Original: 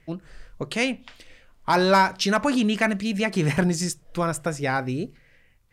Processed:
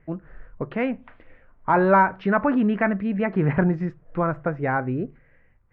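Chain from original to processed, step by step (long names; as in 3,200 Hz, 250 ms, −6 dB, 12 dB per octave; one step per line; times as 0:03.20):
low-pass filter 1,800 Hz 24 dB per octave
level +1.5 dB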